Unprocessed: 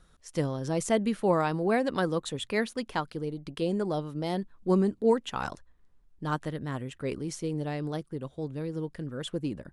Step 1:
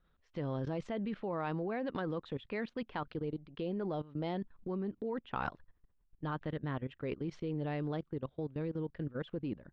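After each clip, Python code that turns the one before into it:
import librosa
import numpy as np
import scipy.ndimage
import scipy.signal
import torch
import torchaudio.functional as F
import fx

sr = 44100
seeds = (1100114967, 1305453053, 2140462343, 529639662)

y = scipy.signal.sosfilt(scipy.signal.butter(4, 3500.0, 'lowpass', fs=sr, output='sos'), x)
y = fx.level_steps(y, sr, step_db=18)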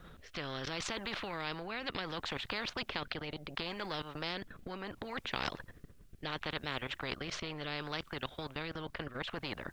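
y = fx.rotary(x, sr, hz=0.7)
y = fx.spectral_comp(y, sr, ratio=4.0)
y = F.gain(torch.from_numpy(y), 4.0).numpy()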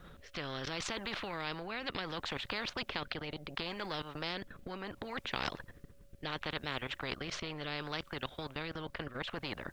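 y = x + 10.0 ** (-69.0 / 20.0) * np.sin(2.0 * np.pi * 560.0 * np.arange(len(x)) / sr)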